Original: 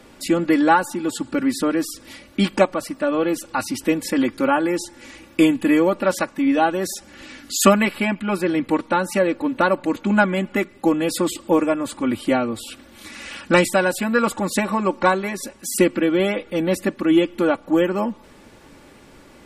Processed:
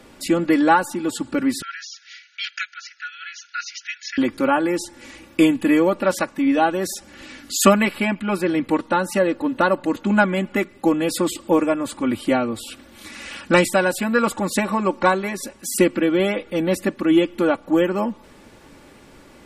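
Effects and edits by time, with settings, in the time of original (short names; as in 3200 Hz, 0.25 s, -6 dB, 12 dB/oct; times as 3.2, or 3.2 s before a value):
1.62–4.18 brick-wall FIR band-pass 1300–6900 Hz
8.78–10.07 notch 2300 Hz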